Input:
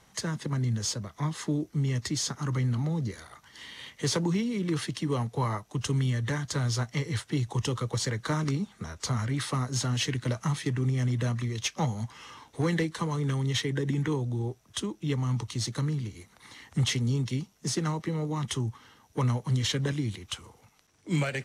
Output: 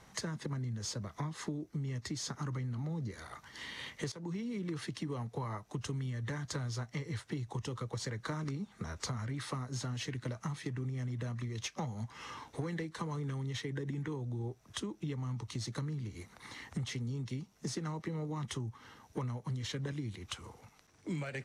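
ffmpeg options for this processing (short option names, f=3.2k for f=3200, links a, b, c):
-filter_complex "[0:a]asplit=2[a][b];[a]atrim=end=4.12,asetpts=PTS-STARTPTS,afade=t=out:st=4.116:d=0.004:c=hsin:silence=0.149624[c];[b]atrim=start=4.12,asetpts=PTS-STARTPTS,afade=t=in:d=0.75:silence=0.149624[d];[c][d]concat=n=2:v=0:a=1,highshelf=f=6.1k:g=-6.5,acompressor=threshold=-38dB:ratio=6,equalizer=f=3.1k:t=o:w=0.38:g=-3.5,volume=2dB"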